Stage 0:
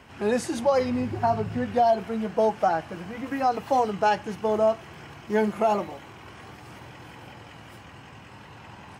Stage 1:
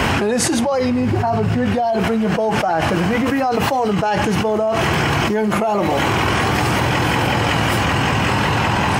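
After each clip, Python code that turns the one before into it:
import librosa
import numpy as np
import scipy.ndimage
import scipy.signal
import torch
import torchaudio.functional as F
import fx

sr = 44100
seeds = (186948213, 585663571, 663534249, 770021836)

y = fx.env_flatten(x, sr, amount_pct=100)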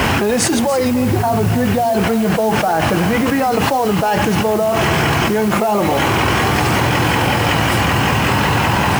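y = fx.quant_dither(x, sr, seeds[0], bits=6, dither='triangular')
y = y + 10.0 ** (-14.0 / 20.0) * np.pad(y, (int(290 * sr / 1000.0), 0))[:len(y)]
y = F.gain(torch.from_numpy(y), 2.0).numpy()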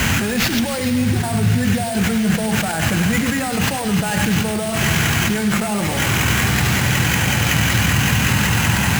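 y = fx.sample_hold(x, sr, seeds[1], rate_hz=9100.0, jitter_pct=0)
y = fx.band_shelf(y, sr, hz=590.0, db=-10.0, octaves=2.3)
y = y + 10.0 ** (-10.0 / 20.0) * np.pad(y, (int(101 * sr / 1000.0), 0))[:len(y)]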